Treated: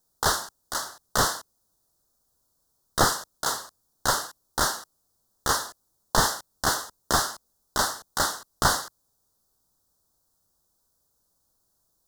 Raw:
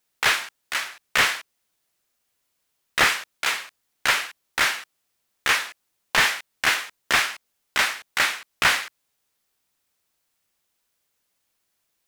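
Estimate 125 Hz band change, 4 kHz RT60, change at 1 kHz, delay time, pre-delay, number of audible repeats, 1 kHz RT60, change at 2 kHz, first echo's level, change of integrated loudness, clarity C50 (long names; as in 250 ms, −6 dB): +9.0 dB, no reverb audible, +1.0 dB, no echo audible, no reverb audible, no echo audible, no reverb audible, −10.0 dB, no echo audible, −4.0 dB, no reverb audible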